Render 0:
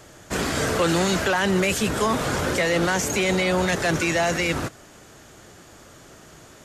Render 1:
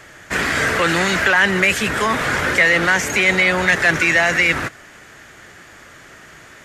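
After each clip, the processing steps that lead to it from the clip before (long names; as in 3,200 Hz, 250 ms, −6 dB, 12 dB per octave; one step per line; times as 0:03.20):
parametric band 1,900 Hz +13.5 dB 1.2 octaves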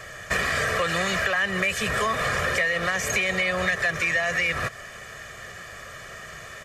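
comb filter 1.7 ms, depth 72%
downward compressor 6 to 1, threshold −22 dBFS, peak gain reduction 14 dB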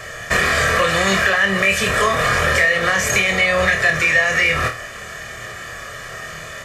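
flutter between parallel walls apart 4.4 metres, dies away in 0.3 s
level +6.5 dB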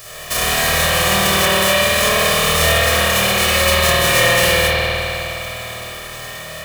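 spectral envelope flattened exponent 0.1
spring reverb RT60 3.5 s, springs 51 ms, chirp 25 ms, DRR −8.5 dB
level −4 dB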